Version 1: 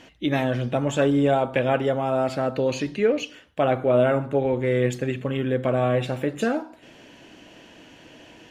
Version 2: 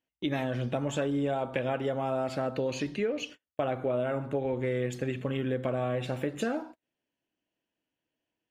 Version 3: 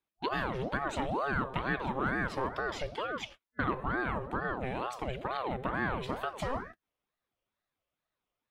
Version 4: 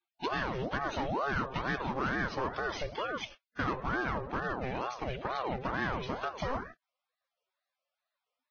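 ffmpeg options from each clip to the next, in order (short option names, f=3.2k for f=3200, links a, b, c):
-af "agate=range=-36dB:threshold=-38dB:ratio=16:detection=peak,acompressor=threshold=-23dB:ratio=6,volume=-3.5dB"
-af "superequalizer=7b=0.501:9b=2.24:15b=0.631,aeval=exprs='val(0)*sin(2*PI*620*n/s+620*0.6/2.2*sin(2*PI*2.2*n/s))':c=same"
-af "asoftclip=type=hard:threshold=-26dB" -ar 16000 -c:a libvorbis -b:a 16k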